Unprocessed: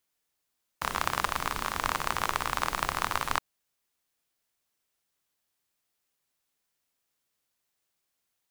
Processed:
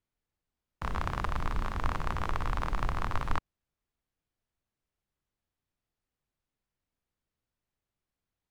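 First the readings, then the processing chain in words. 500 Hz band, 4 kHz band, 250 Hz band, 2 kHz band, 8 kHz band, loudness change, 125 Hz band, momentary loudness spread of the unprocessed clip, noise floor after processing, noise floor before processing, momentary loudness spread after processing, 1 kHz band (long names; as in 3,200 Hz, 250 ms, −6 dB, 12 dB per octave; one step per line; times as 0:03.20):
−3.0 dB, −11.5 dB, +1.5 dB, −7.5 dB, −16.5 dB, −4.5 dB, +8.0 dB, 3 LU, below −85 dBFS, −81 dBFS, 3 LU, −5.5 dB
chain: RIAA equalisation playback
level −5.5 dB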